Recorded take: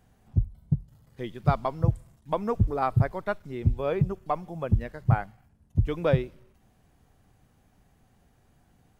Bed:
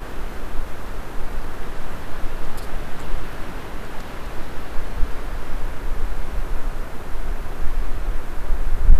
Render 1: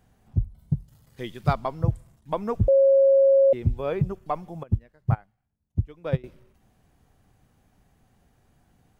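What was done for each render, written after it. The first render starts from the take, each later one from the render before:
0:00.59–0:01.53: high-shelf EQ 2,200 Hz +8 dB
0:02.68–0:03.53: beep over 545 Hz −13.5 dBFS
0:04.63–0:06.24: expander for the loud parts 2.5 to 1, over −29 dBFS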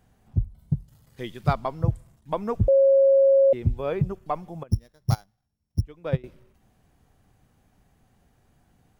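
0:04.71–0:05.81: samples sorted by size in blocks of 8 samples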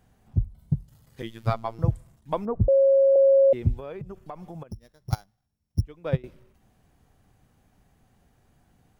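0:01.22–0:01.79: phases set to zero 113 Hz
0:02.45–0:03.16: Bessel low-pass filter 890 Hz, order 4
0:03.77–0:05.13: downward compressor, threshold −34 dBFS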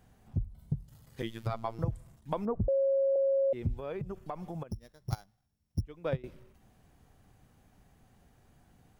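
brickwall limiter −16 dBFS, peak gain reduction 8 dB
downward compressor 2.5 to 1, threshold −30 dBFS, peak gain reduction 8 dB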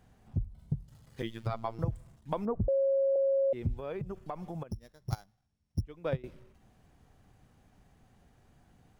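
running median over 3 samples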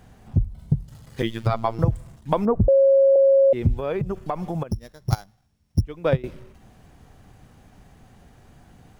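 level +12 dB

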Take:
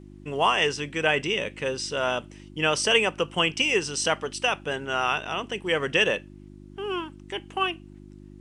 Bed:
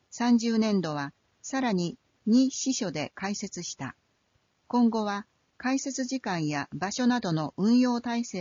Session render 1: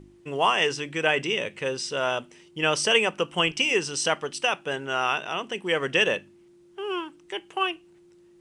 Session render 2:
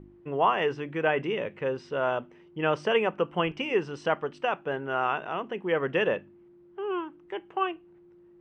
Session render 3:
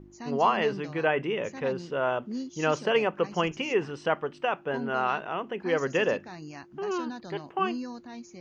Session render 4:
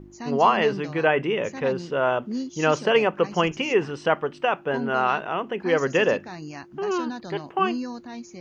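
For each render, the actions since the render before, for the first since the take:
hum removal 50 Hz, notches 6
low-pass filter 1,500 Hz 12 dB per octave
mix in bed −13 dB
level +5 dB

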